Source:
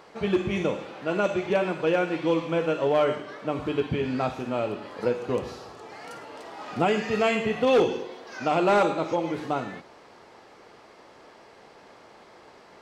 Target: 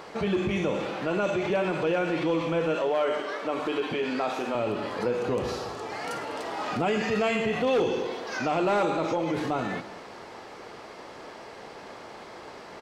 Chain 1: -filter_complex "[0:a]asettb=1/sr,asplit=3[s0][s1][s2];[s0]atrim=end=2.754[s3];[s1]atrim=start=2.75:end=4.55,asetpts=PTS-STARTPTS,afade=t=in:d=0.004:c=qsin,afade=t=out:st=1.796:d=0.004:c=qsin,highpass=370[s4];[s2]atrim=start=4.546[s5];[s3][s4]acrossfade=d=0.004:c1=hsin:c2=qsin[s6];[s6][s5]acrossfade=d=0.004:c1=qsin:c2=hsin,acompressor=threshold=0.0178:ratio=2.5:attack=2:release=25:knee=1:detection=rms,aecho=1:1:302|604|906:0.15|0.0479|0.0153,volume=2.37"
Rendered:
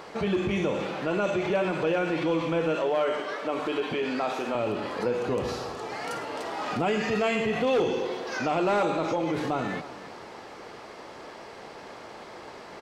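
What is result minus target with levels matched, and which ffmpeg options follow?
echo 103 ms late
-filter_complex "[0:a]asettb=1/sr,asplit=3[s0][s1][s2];[s0]atrim=end=2.754[s3];[s1]atrim=start=2.75:end=4.55,asetpts=PTS-STARTPTS,afade=t=in:d=0.004:c=qsin,afade=t=out:st=1.796:d=0.004:c=qsin,highpass=370[s4];[s2]atrim=start=4.546[s5];[s3][s4]acrossfade=d=0.004:c1=hsin:c2=qsin[s6];[s6][s5]acrossfade=d=0.004:c1=qsin:c2=hsin,acompressor=threshold=0.0178:ratio=2.5:attack=2:release=25:knee=1:detection=rms,aecho=1:1:199|398|597:0.15|0.0479|0.0153,volume=2.37"

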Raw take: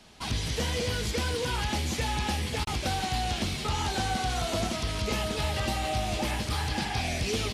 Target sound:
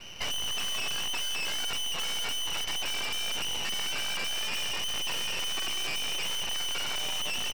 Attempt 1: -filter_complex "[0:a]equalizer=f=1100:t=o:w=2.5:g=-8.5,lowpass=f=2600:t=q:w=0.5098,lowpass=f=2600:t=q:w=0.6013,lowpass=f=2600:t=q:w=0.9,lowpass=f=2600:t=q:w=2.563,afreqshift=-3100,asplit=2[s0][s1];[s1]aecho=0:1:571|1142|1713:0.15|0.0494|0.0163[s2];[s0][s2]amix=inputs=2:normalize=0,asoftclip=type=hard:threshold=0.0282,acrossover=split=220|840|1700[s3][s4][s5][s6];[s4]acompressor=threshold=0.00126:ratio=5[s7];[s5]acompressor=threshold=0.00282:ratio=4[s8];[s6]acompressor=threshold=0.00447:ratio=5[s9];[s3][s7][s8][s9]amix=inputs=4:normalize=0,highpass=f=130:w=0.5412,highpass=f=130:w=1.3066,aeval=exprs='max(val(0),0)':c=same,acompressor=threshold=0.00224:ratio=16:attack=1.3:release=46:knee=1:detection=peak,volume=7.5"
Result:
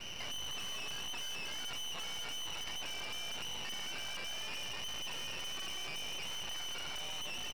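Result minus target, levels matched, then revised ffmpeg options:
compression: peak gain reduction +13 dB; hard clipper: distortion -5 dB
-filter_complex "[0:a]equalizer=f=1100:t=o:w=2.5:g=-8.5,lowpass=f=2600:t=q:w=0.5098,lowpass=f=2600:t=q:w=0.6013,lowpass=f=2600:t=q:w=0.9,lowpass=f=2600:t=q:w=2.563,afreqshift=-3100,asplit=2[s0][s1];[s1]aecho=0:1:571|1142|1713:0.15|0.0494|0.0163[s2];[s0][s2]amix=inputs=2:normalize=0,asoftclip=type=hard:threshold=0.0126,acrossover=split=220|840|1700[s3][s4][s5][s6];[s4]acompressor=threshold=0.00126:ratio=5[s7];[s5]acompressor=threshold=0.00282:ratio=4[s8];[s6]acompressor=threshold=0.00447:ratio=5[s9];[s3][s7][s8][s9]amix=inputs=4:normalize=0,highpass=f=130:w=0.5412,highpass=f=130:w=1.3066,aeval=exprs='max(val(0),0)':c=same,volume=7.5"

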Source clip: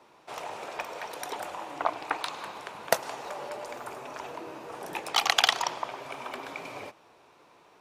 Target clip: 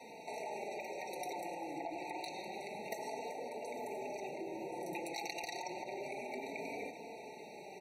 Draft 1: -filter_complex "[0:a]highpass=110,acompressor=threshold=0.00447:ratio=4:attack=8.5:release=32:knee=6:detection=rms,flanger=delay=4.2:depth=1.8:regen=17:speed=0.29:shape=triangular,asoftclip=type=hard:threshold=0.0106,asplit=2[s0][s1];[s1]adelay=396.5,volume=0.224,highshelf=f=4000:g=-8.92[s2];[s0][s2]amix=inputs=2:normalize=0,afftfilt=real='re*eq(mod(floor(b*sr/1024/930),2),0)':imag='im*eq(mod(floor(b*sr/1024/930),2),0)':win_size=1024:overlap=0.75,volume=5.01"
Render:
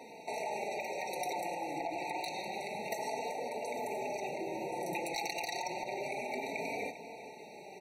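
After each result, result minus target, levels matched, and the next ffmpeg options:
compression: peak gain reduction -6 dB; 250 Hz band -2.5 dB
-filter_complex "[0:a]highpass=110,acompressor=threshold=0.00188:ratio=4:attack=8.5:release=32:knee=6:detection=rms,flanger=delay=4.2:depth=1.8:regen=17:speed=0.29:shape=triangular,asoftclip=type=hard:threshold=0.0106,asplit=2[s0][s1];[s1]adelay=396.5,volume=0.224,highshelf=f=4000:g=-8.92[s2];[s0][s2]amix=inputs=2:normalize=0,afftfilt=real='re*eq(mod(floor(b*sr/1024/930),2),0)':imag='im*eq(mod(floor(b*sr/1024/930),2),0)':win_size=1024:overlap=0.75,volume=5.01"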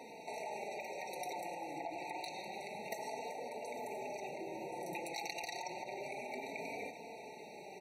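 250 Hz band -2.5 dB
-filter_complex "[0:a]highpass=110,adynamicequalizer=threshold=0.00316:dfrequency=330:dqfactor=1.4:tfrequency=330:tqfactor=1.4:attack=5:release=100:ratio=0.438:range=2.5:mode=boostabove:tftype=bell,acompressor=threshold=0.00188:ratio=4:attack=8.5:release=32:knee=6:detection=rms,flanger=delay=4.2:depth=1.8:regen=17:speed=0.29:shape=triangular,asoftclip=type=hard:threshold=0.0106,asplit=2[s0][s1];[s1]adelay=396.5,volume=0.224,highshelf=f=4000:g=-8.92[s2];[s0][s2]amix=inputs=2:normalize=0,afftfilt=real='re*eq(mod(floor(b*sr/1024/930),2),0)':imag='im*eq(mod(floor(b*sr/1024/930),2),0)':win_size=1024:overlap=0.75,volume=5.01"

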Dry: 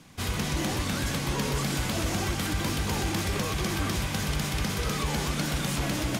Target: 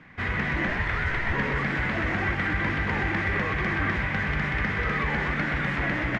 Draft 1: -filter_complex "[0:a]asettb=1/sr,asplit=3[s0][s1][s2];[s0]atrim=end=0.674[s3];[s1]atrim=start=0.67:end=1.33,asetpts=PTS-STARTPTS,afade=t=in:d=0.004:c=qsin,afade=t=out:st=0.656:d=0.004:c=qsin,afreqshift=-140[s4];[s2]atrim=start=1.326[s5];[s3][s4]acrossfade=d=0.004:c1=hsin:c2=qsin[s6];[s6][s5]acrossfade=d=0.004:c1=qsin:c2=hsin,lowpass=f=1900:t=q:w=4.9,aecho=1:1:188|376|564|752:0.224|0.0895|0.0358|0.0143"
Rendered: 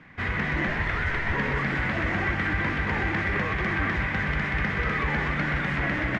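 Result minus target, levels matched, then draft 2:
echo 85 ms late
-filter_complex "[0:a]asettb=1/sr,asplit=3[s0][s1][s2];[s0]atrim=end=0.674[s3];[s1]atrim=start=0.67:end=1.33,asetpts=PTS-STARTPTS,afade=t=in:d=0.004:c=qsin,afade=t=out:st=0.656:d=0.004:c=qsin,afreqshift=-140[s4];[s2]atrim=start=1.326[s5];[s3][s4]acrossfade=d=0.004:c1=hsin:c2=qsin[s6];[s6][s5]acrossfade=d=0.004:c1=qsin:c2=hsin,lowpass=f=1900:t=q:w=4.9,aecho=1:1:103|206|309|412:0.224|0.0895|0.0358|0.0143"

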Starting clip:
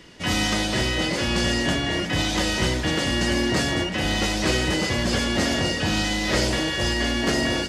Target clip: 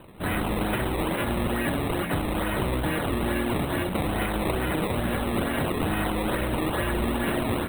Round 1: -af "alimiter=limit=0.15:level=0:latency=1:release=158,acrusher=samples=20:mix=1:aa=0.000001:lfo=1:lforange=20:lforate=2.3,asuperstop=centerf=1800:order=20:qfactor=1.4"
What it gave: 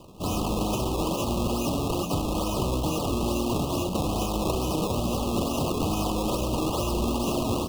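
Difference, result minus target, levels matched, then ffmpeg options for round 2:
2 kHz band -11.5 dB
-af "alimiter=limit=0.15:level=0:latency=1:release=158,acrusher=samples=20:mix=1:aa=0.000001:lfo=1:lforange=20:lforate=2.3,asuperstop=centerf=5800:order=20:qfactor=1.4"

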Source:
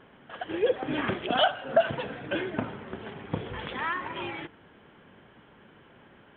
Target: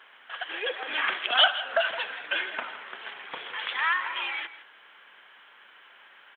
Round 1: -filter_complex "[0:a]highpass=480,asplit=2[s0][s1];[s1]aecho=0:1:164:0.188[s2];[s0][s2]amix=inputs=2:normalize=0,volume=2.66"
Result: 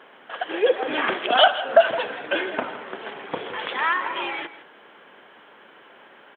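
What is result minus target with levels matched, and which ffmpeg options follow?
500 Hz band +8.5 dB
-filter_complex "[0:a]highpass=1400,asplit=2[s0][s1];[s1]aecho=0:1:164:0.188[s2];[s0][s2]amix=inputs=2:normalize=0,volume=2.66"

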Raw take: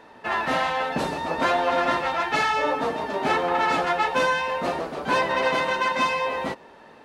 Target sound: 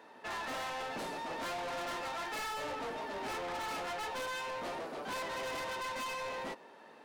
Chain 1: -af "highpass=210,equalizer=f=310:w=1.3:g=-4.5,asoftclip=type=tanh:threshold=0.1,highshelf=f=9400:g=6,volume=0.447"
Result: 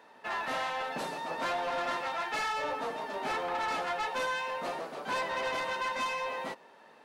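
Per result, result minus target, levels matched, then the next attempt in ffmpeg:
saturation: distortion -8 dB; 250 Hz band -3.0 dB
-af "highpass=210,equalizer=f=310:w=1.3:g=-4.5,asoftclip=type=tanh:threshold=0.0316,highshelf=f=9400:g=6,volume=0.447"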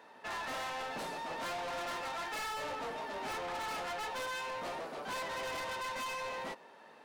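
250 Hz band -2.5 dB
-af "highpass=210,asoftclip=type=tanh:threshold=0.0316,highshelf=f=9400:g=6,volume=0.447"

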